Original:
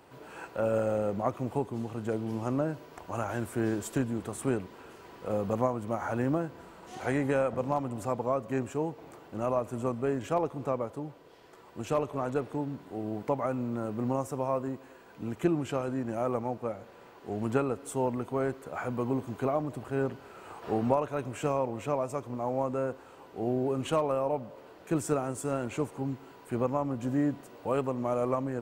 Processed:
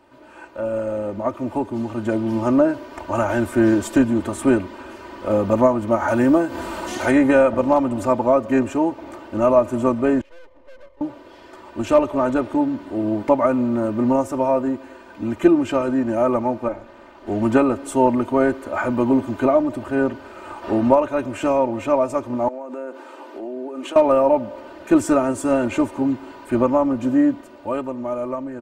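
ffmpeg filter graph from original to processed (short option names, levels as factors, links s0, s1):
-filter_complex "[0:a]asettb=1/sr,asplit=3[s0][s1][s2];[s0]atrim=end=6.084[s3];[s1]atrim=start=6.08:end=7.11,asetpts=PTS-STARTPTS,afade=t=in:d=0.004:c=qsin,afade=t=out:st=1.026:d=0.004:c=qsin,aemphasis=mode=production:type=cd,acompressor=mode=upward:threshold=0.0282:ratio=2.5:attack=3.2:release=140:knee=2.83:detection=peak[s4];[s2]atrim=start=7.106[s5];[s3][s4]acrossfade=d=0.004:c1=hsin:c2=qsin[s6];[s6][s5]acrossfade=d=0.004:c1=qsin:c2=hsin,asettb=1/sr,asplit=3[s7][s8][s9];[s7]atrim=end=10.214[s10];[s8]atrim=start=10.21:end=11.01,asetpts=PTS-STARTPTS,afade=t=in:d=0.004:c=qsin,afade=t=out:st=0.796:d=0.004:c=qsin,asplit=3[s11][s12][s13];[s11]bandpass=f=530:t=q:w=8,volume=1[s14];[s12]bandpass=f=1840:t=q:w=8,volume=0.501[s15];[s13]bandpass=f=2480:t=q:w=8,volume=0.355[s16];[s14][s15][s16]amix=inputs=3:normalize=0,aeval=exprs='(tanh(100*val(0)+0.8)-tanh(0.8))/100':c=same,aeval=exprs='max(val(0),0)':c=same[s17];[s9]atrim=start=11.006[s18];[s10][s17]acrossfade=d=0.004:c1=hsin:c2=qsin[s19];[s19][s18]acrossfade=d=0.004:c1=qsin:c2=hsin,asettb=1/sr,asplit=3[s20][s21][s22];[s20]atrim=end=16.684[s23];[s21]atrim=start=16.68:end=17.27,asetpts=PTS-STARTPTS,afade=t=in:d=0.004:c=qsin,afade=t=out:st=0.586:d=0.004:c=qsin,tremolo=f=230:d=0.947,highshelf=f=11000:g=-5.5[s24];[s22]atrim=start=17.266[s25];[s23][s24]acrossfade=d=0.004:c1=hsin:c2=qsin[s26];[s26][s25]acrossfade=d=0.004:c1=qsin:c2=hsin,asettb=1/sr,asplit=3[s27][s28][s29];[s27]atrim=end=22.484[s30];[s28]atrim=start=22.48:end=23.96,asetpts=PTS-STARTPTS,afade=t=in:d=0.004:c=qsin,afade=t=out:st=1.476:d=0.004:c=qsin,highpass=f=270:w=0.5412,highpass=f=270:w=1.3066,acompressor=threshold=0.01:ratio=10:attack=3.2:release=140:knee=1:detection=peak[s31];[s29]atrim=start=23.956[s32];[s30][s31]acrossfade=d=0.004:c1=hsin:c2=qsin[s33];[s33][s32]acrossfade=d=0.004:c1=qsin:c2=hsin,highshelf=f=6400:g=-9.5,aecho=1:1:3.3:0.83,dynaudnorm=f=100:g=31:m=3.98"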